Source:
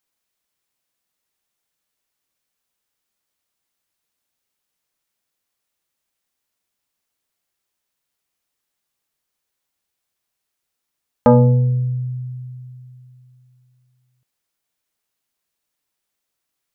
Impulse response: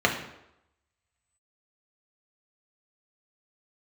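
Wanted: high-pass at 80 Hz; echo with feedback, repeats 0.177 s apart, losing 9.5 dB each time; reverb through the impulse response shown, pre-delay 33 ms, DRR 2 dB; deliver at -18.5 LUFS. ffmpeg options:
-filter_complex "[0:a]highpass=80,aecho=1:1:177|354|531|708:0.335|0.111|0.0365|0.012,asplit=2[a][b];[1:a]atrim=start_sample=2205,adelay=33[c];[b][c]afir=irnorm=-1:irlink=0,volume=-18dB[d];[a][d]amix=inputs=2:normalize=0,volume=-4dB"

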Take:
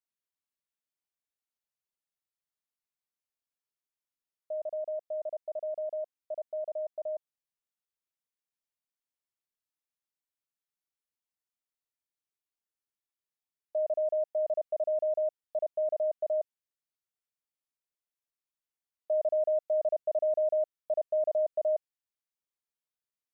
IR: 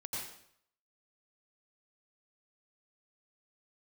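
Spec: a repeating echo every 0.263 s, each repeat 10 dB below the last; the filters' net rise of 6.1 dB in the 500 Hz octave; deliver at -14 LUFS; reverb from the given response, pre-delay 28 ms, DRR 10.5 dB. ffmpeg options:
-filter_complex "[0:a]equalizer=f=500:t=o:g=8.5,aecho=1:1:263|526|789|1052:0.316|0.101|0.0324|0.0104,asplit=2[a][b];[1:a]atrim=start_sample=2205,adelay=28[c];[b][c]afir=irnorm=-1:irlink=0,volume=-11.5dB[d];[a][d]amix=inputs=2:normalize=0,volume=11dB"

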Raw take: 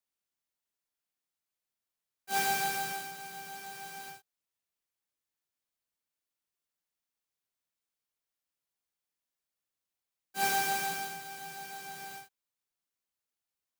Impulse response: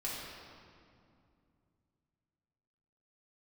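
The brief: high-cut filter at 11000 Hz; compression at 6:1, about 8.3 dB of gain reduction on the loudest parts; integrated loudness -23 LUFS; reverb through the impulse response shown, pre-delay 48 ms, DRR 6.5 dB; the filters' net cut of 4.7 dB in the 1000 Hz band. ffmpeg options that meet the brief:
-filter_complex "[0:a]lowpass=11k,equalizer=f=1k:t=o:g=-7,acompressor=threshold=-38dB:ratio=6,asplit=2[a][b];[1:a]atrim=start_sample=2205,adelay=48[c];[b][c]afir=irnorm=-1:irlink=0,volume=-9.5dB[d];[a][d]amix=inputs=2:normalize=0,volume=19dB"

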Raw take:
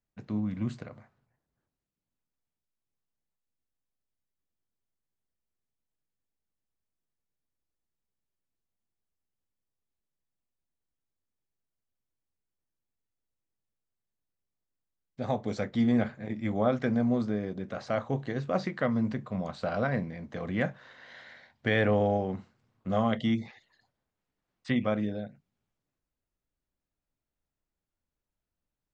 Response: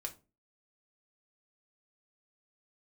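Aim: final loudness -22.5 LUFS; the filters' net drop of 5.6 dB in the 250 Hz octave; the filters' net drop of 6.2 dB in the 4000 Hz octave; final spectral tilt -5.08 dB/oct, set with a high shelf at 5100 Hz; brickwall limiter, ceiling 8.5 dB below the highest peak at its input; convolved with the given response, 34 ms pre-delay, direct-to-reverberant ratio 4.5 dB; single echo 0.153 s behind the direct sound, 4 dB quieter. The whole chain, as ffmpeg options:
-filter_complex "[0:a]equalizer=f=250:t=o:g=-6.5,equalizer=f=4k:t=o:g=-5.5,highshelf=f=5.1k:g=-6.5,alimiter=limit=-24dB:level=0:latency=1,aecho=1:1:153:0.631,asplit=2[a][b];[1:a]atrim=start_sample=2205,adelay=34[c];[b][c]afir=irnorm=-1:irlink=0,volume=-3dB[d];[a][d]amix=inputs=2:normalize=0,volume=11.5dB"

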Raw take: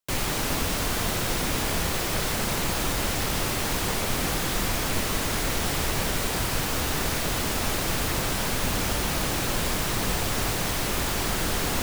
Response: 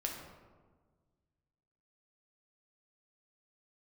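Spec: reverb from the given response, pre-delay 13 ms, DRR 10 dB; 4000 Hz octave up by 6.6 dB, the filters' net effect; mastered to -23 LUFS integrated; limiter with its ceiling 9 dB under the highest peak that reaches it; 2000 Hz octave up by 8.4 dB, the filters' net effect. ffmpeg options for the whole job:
-filter_complex "[0:a]equalizer=f=2k:t=o:g=9,equalizer=f=4k:t=o:g=5.5,alimiter=limit=-19dB:level=0:latency=1,asplit=2[a][b];[1:a]atrim=start_sample=2205,adelay=13[c];[b][c]afir=irnorm=-1:irlink=0,volume=-11.5dB[d];[a][d]amix=inputs=2:normalize=0,volume=3.5dB"

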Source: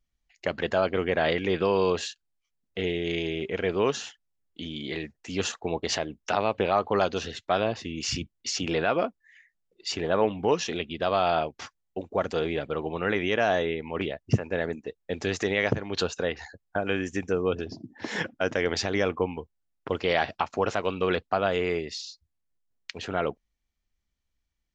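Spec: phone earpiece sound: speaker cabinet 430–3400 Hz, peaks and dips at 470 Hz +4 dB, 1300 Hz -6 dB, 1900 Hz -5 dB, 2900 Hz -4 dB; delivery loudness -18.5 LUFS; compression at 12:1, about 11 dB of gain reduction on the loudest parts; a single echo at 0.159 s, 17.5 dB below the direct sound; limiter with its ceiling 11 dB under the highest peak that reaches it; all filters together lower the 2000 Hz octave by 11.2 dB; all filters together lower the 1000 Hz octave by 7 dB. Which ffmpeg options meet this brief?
-af "equalizer=f=1k:t=o:g=-7.5,equalizer=f=2k:t=o:g=-7,acompressor=threshold=-29dB:ratio=12,alimiter=level_in=3.5dB:limit=-24dB:level=0:latency=1,volume=-3.5dB,highpass=430,equalizer=f=470:t=q:w=4:g=4,equalizer=f=1.3k:t=q:w=4:g=-6,equalizer=f=1.9k:t=q:w=4:g=-5,equalizer=f=2.9k:t=q:w=4:g=-4,lowpass=f=3.4k:w=0.5412,lowpass=f=3.4k:w=1.3066,aecho=1:1:159:0.133,volume=23.5dB"

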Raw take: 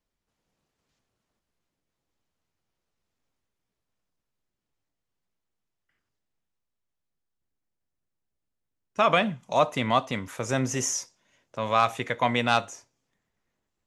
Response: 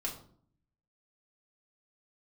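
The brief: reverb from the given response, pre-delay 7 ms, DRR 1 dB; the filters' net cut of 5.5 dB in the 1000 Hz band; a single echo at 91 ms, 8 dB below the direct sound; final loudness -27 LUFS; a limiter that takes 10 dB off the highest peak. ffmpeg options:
-filter_complex "[0:a]equalizer=f=1k:t=o:g=-7.5,alimiter=limit=-19.5dB:level=0:latency=1,aecho=1:1:91:0.398,asplit=2[a][b];[1:a]atrim=start_sample=2205,adelay=7[c];[b][c]afir=irnorm=-1:irlink=0,volume=-3dB[d];[a][d]amix=inputs=2:normalize=0,volume=1.5dB"

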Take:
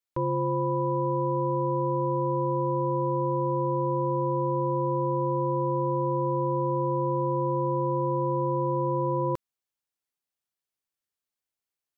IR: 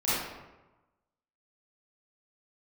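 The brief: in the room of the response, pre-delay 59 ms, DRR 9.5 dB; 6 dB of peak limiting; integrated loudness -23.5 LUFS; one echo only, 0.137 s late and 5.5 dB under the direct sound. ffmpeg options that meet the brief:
-filter_complex "[0:a]alimiter=limit=-23.5dB:level=0:latency=1,aecho=1:1:137:0.531,asplit=2[a][b];[1:a]atrim=start_sample=2205,adelay=59[c];[b][c]afir=irnorm=-1:irlink=0,volume=-21dB[d];[a][d]amix=inputs=2:normalize=0,volume=5.5dB"

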